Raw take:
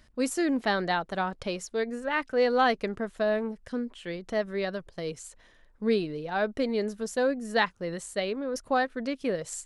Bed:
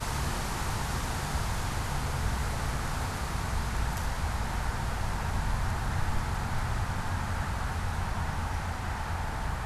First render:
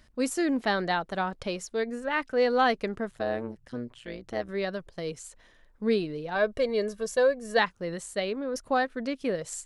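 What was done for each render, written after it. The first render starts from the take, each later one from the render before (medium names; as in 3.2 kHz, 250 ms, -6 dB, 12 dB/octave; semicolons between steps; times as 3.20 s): 3.11–4.49 s: AM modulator 120 Hz, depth 75%; 6.35–7.59 s: comb 1.8 ms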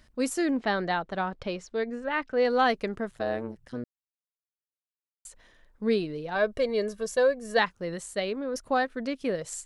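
0.51–2.45 s: distance through air 110 m; 3.84–5.25 s: mute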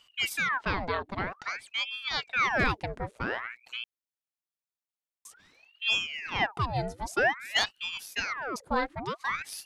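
hard clipper -15 dBFS, distortion -30 dB; ring modulator with a swept carrier 1.6 kHz, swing 85%, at 0.51 Hz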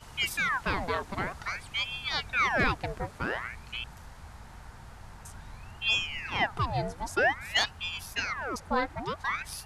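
add bed -16 dB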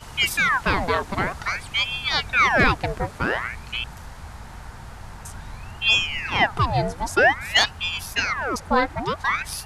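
trim +8.5 dB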